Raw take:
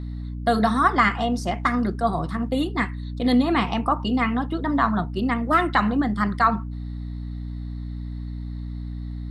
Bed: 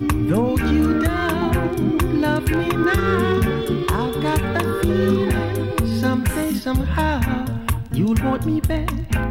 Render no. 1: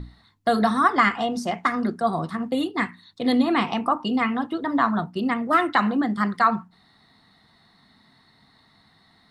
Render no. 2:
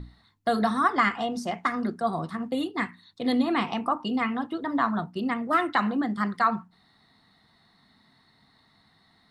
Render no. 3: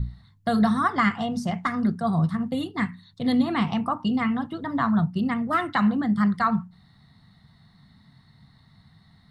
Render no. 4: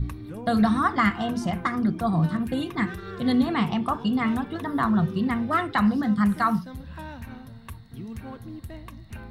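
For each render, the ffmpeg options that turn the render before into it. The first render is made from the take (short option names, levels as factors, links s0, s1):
-af "bandreject=f=60:t=h:w=6,bandreject=f=120:t=h:w=6,bandreject=f=180:t=h:w=6,bandreject=f=240:t=h:w=6,bandreject=f=300:t=h:w=6"
-af "volume=0.631"
-af "lowshelf=f=220:t=q:w=1.5:g=13,bandreject=f=2500:w=21"
-filter_complex "[1:a]volume=0.112[s0];[0:a][s0]amix=inputs=2:normalize=0"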